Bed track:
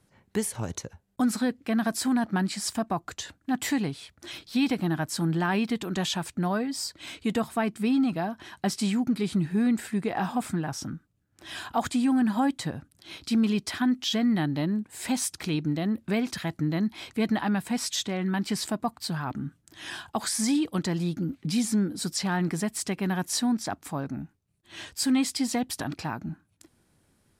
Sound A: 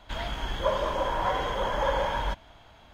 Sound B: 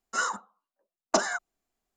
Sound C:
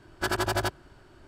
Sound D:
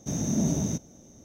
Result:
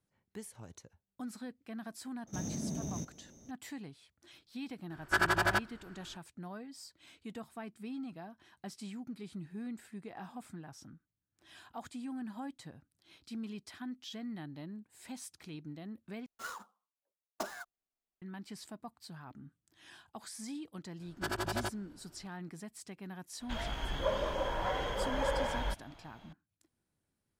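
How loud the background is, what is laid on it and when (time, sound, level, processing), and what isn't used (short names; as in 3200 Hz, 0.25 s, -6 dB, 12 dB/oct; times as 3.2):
bed track -18 dB
2.27 add D -6 dB + compressor, threshold -28 dBFS
4.9 add C -6.5 dB + bell 1600 Hz +10 dB 1.4 oct
16.26 replace with B -14.5 dB + switching dead time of 0.07 ms
21 add C -8.5 dB
23.4 add A -5 dB + dynamic EQ 1000 Hz, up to -5 dB, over -41 dBFS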